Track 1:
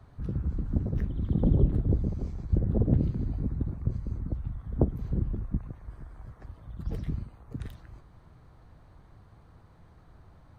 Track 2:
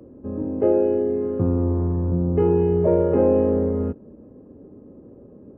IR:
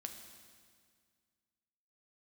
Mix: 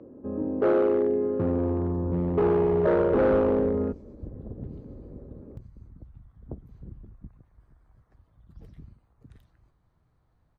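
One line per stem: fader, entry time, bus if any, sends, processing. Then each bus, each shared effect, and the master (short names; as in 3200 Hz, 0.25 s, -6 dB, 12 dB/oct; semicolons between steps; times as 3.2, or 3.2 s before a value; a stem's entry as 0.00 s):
-14.5 dB, 1.70 s, no send, dry
-0.5 dB, 0.00 s, no send, hard clip -16 dBFS, distortion -13 dB; LPF 2500 Hz 12 dB/oct; low shelf 130 Hz -10.5 dB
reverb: off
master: dry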